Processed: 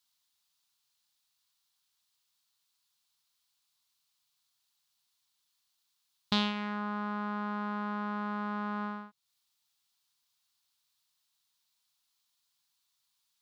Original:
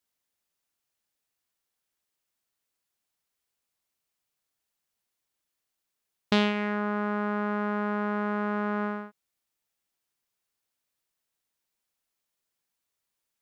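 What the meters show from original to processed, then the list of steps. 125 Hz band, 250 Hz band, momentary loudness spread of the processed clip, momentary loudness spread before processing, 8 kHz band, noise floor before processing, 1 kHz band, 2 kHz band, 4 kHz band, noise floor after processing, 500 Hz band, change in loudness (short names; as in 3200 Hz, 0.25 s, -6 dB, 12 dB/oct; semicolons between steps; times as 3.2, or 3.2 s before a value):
-6.0 dB, -6.0 dB, 7 LU, 6 LU, n/a, -84 dBFS, -4.0 dB, -7.0 dB, -0.5 dB, -79 dBFS, -12.5 dB, -5.5 dB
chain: ten-band EQ 125 Hz +7 dB, 500 Hz -10 dB, 1000 Hz +7 dB, 2000 Hz -5 dB, 4000 Hz +10 dB; mismatched tape noise reduction encoder only; gain -7 dB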